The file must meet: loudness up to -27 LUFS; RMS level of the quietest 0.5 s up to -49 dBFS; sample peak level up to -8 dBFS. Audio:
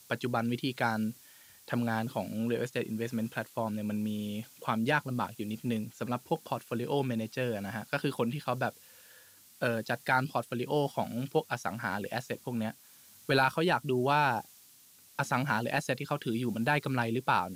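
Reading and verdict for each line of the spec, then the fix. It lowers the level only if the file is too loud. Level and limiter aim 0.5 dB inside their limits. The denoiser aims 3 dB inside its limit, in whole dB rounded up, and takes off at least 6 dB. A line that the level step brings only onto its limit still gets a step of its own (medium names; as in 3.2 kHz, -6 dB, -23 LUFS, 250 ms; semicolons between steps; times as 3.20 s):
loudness -32.5 LUFS: pass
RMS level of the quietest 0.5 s -58 dBFS: pass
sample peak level -14.0 dBFS: pass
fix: none needed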